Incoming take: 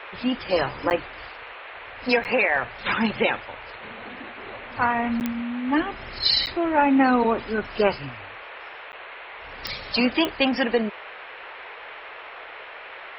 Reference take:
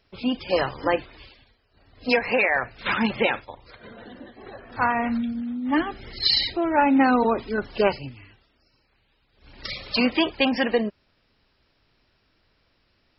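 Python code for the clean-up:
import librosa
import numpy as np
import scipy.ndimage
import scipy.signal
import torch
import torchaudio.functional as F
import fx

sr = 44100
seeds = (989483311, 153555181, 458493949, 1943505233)

y = fx.fix_declick_ar(x, sr, threshold=10.0)
y = fx.fix_interpolate(y, sr, at_s=(0.9, 2.24, 5.2, 6.46, 8.92), length_ms=9.4)
y = fx.noise_reduce(y, sr, print_start_s=8.81, print_end_s=9.31, reduce_db=26.0)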